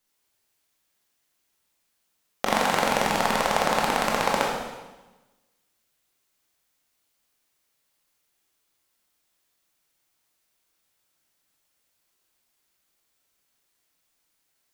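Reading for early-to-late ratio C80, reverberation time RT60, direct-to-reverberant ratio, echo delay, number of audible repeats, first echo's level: 3.0 dB, 1.1 s, −3.0 dB, no echo audible, no echo audible, no echo audible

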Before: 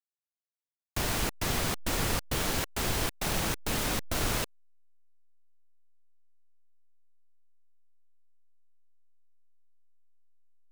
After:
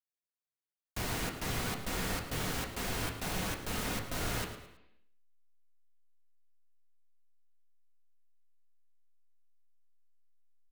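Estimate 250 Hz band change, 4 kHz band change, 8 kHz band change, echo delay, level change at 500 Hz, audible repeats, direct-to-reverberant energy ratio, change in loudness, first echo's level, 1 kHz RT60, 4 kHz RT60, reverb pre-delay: −3.5 dB, −6.0 dB, −6.5 dB, 109 ms, −5.0 dB, 2, 1.0 dB, −5.5 dB, −13.0 dB, 0.80 s, 0.85 s, 3 ms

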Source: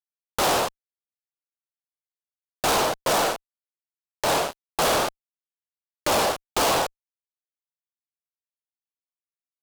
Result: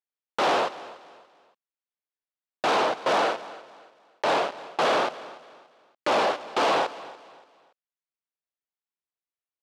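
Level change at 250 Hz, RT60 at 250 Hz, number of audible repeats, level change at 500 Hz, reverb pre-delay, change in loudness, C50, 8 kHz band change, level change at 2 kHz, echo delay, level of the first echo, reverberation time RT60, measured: −2.0 dB, no reverb audible, 2, 0.0 dB, no reverb audible, −1.5 dB, no reverb audible, −14.5 dB, −0.5 dB, 287 ms, −18.0 dB, no reverb audible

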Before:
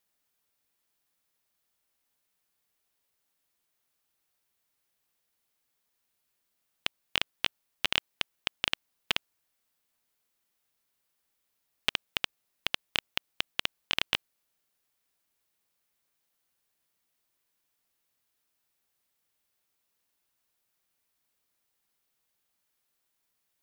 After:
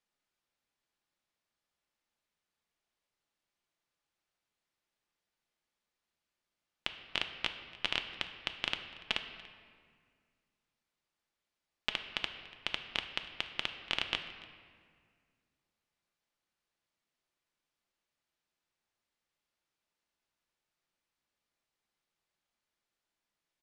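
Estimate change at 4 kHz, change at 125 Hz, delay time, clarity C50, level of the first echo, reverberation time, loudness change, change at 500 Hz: −4.5 dB, −3.5 dB, 288 ms, 8.5 dB, −21.5 dB, 1.9 s, −4.5 dB, −3.0 dB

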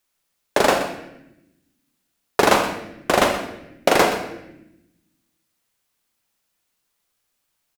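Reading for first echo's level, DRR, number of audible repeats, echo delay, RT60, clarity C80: −13.5 dB, 4.0 dB, 1, 124 ms, 0.85 s, 8.0 dB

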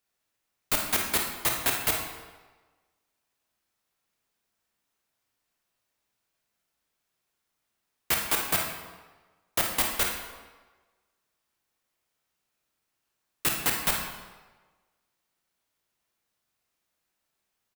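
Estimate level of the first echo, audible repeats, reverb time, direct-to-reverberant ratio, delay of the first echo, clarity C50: −9.0 dB, 1, 1.3 s, 0.5 dB, 53 ms, 3.0 dB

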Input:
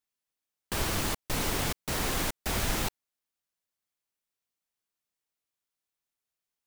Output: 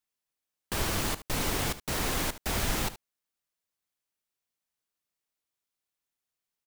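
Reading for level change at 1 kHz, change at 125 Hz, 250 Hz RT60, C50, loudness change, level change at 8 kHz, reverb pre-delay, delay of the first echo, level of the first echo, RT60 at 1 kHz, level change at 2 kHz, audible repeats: 0.0 dB, 0.0 dB, no reverb audible, no reverb audible, 0.0 dB, 0.0 dB, no reverb audible, 73 ms, −15.0 dB, no reverb audible, 0.0 dB, 1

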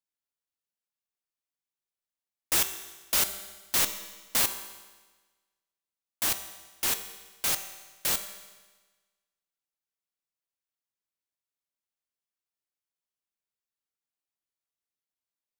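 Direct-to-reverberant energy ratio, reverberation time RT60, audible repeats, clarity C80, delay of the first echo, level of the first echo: 8.0 dB, 1.3 s, no echo audible, 11.5 dB, no echo audible, no echo audible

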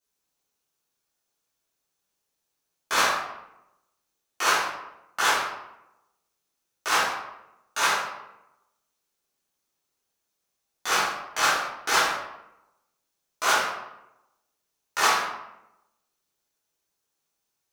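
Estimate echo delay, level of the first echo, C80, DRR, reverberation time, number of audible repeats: no echo audible, no echo audible, 5.0 dB, −11.5 dB, 0.90 s, no echo audible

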